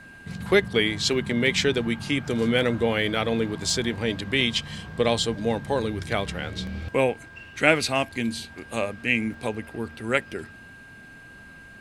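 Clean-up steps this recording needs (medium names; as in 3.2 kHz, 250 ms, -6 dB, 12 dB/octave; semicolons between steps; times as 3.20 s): band-stop 1.6 kHz, Q 30; interpolate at 3.70/4.41/6.67/9.34 s, 1.7 ms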